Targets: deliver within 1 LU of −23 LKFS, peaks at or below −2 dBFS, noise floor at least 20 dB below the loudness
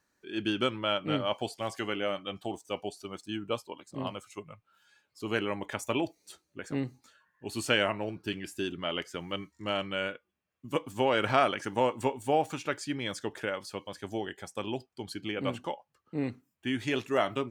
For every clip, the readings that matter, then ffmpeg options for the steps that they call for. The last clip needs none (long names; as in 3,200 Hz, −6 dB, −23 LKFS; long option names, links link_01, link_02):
integrated loudness −33.0 LKFS; sample peak −10.0 dBFS; target loudness −23.0 LKFS
→ -af "volume=10dB,alimiter=limit=-2dB:level=0:latency=1"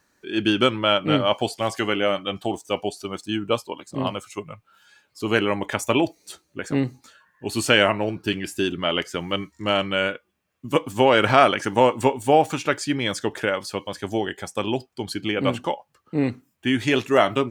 integrated loudness −23.0 LKFS; sample peak −2.0 dBFS; background noise floor −70 dBFS